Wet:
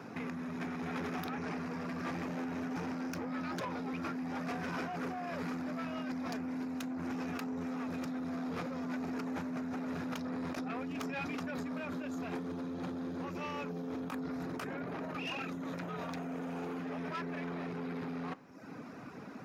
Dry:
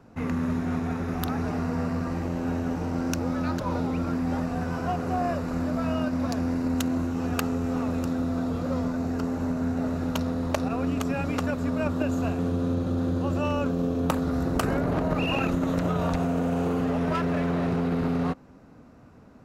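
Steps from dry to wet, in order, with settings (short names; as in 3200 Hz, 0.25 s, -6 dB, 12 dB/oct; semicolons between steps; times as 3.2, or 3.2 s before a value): HPF 100 Hz 12 dB/oct; reverb removal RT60 0.63 s; 13.25–13.76 ripple EQ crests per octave 0.81, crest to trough 7 dB; negative-ratio compressor -36 dBFS, ratio -1; soft clip -35.5 dBFS, distortion -11 dB; reverb RT60 0.45 s, pre-delay 3 ms, DRR 17.5 dB; gain +1 dB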